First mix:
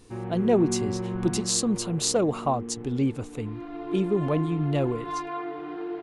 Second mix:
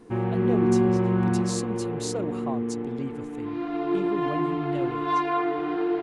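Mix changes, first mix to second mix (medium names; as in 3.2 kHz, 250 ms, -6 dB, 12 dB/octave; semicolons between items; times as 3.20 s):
speech -9.0 dB; background +8.0 dB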